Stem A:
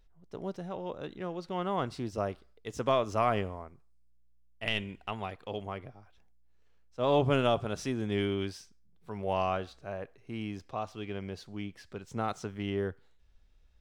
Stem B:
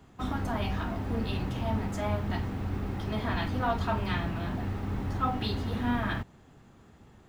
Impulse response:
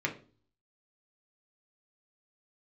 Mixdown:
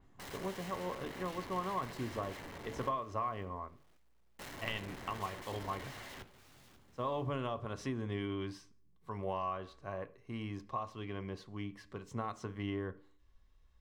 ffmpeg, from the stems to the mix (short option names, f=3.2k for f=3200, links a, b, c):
-filter_complex "[0:a]equalizer=f=1.1k:w=7.8:g=14.5,acompressor=threshold=-31dB:ratio=6,volume=-5dB,asplit=2[a][b];[b]volume=-12.5dB[c];[1:a]aeval=exprs='(mod(35.5*val(0)+1,2)-1)/35.5':c=same,volume=-14dB,asplit=3[d][e][f];[d]atrim=end=2.89,asetpts=PTS-STARTPTS,afade=t=out:st=2.886:d=0.004:c=hsin[g];[e]atrim=start=2.89:end=4.39,asetpts=PTS-STARTPTS,volume=0[h];[f]atrim=start=4.39,asetpts=PTS-STARTPTS,afade=t=in:d=0.004:c=hsin[i];[g][h][i]concat=n=3:v=0:a=1,asplit=3[j][k][l];[k]volume=-11.5dB[m];[l]volume=-14.5dB[n];[2:a]atrim=start_sample=2205[o];[c][m]amix=inputs=2:normalize=0[p];[p][o]afir=irnorm=-1:irlink=0[q];[n]aecho=0:1:542|1084|1626|2168|2710:1|0.35|0.122|0.0429|0.015[r];[a][j][q][r]amix=inputs=4:normalize=0,adynamicequalizer=threshold=0.001:dfrequency=4400:dqfactor=0.7:tfrequency=4400:tqfactor=0.7:attack=5:release=100:ratio=0.375:range=3.5:mode=cutabove:tftype=highshelf"